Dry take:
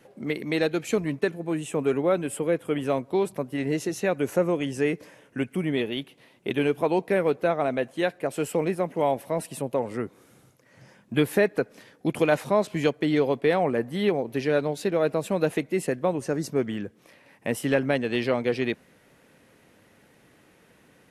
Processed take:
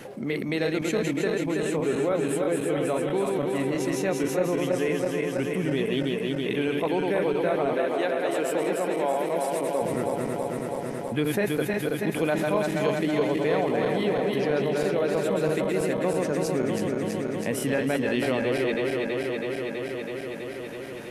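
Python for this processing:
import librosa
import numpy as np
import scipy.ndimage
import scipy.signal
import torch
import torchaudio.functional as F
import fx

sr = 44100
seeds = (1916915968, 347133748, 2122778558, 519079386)

y = fx.reverse_delay_fb(x, sr, ms=163, feedback_pct=82, wet_db=-4)
y = fx.highpass(y, sr, hz=260.0, slope=12, at=(7.73, 9.82))
y = fx.env_flatten(y, sr, amount_pct=50)
y = y * librosa.db_to_amplitude(-7.0)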